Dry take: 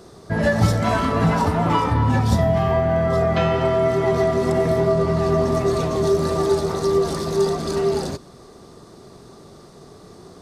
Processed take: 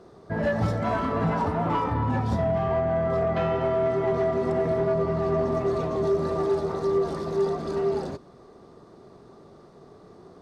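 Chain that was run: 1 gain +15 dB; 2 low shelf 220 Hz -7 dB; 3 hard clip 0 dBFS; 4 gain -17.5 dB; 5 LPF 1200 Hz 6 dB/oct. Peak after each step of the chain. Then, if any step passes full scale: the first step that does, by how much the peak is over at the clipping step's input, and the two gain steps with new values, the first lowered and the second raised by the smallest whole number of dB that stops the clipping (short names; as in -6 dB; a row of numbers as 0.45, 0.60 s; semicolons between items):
+9.5, +7.5, 0.0, -17.5, -17.5 dBFS; step 1, 7.5 dB; step 1 +7 dB, step 4 -9.5 dB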